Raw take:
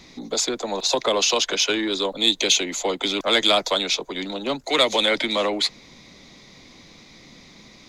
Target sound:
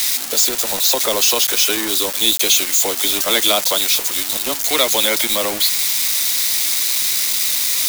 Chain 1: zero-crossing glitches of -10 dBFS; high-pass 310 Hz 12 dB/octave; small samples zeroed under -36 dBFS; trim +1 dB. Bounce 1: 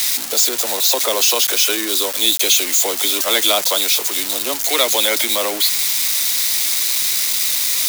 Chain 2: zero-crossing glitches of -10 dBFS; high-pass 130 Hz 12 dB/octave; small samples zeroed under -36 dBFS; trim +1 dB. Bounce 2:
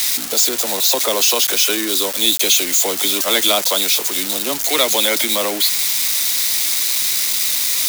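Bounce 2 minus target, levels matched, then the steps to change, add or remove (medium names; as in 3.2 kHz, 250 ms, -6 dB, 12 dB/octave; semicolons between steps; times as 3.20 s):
small samples zeroed: distortion -14 dB
change: small samples zeroed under -24.5 dBFS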